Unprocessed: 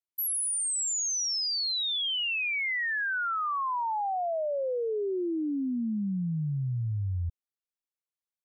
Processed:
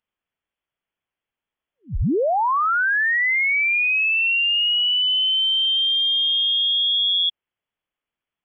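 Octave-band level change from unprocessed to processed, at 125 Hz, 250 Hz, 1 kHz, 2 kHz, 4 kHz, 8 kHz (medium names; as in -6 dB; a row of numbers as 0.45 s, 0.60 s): -2.0 dB, -0.5 dB, +6.5 dB, +12.5 dB, +15.5 dB, under -40 dB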